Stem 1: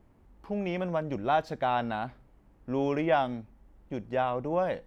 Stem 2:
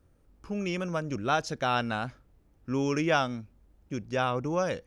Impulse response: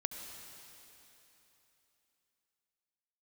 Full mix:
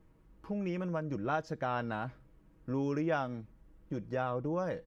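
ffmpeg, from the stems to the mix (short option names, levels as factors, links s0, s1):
-filter_complex "[0:a]equalizer=f=730:w=4.5:g=-11,aecho=1:1:6.3:0.7,acompressor=threshold=0.02:ratio=6,volume=0.596[s0];[1:a]lowpass=f=1700:p=1,volume=0.398[s1];[s0][s1]amix=inputs=2:normalize=0"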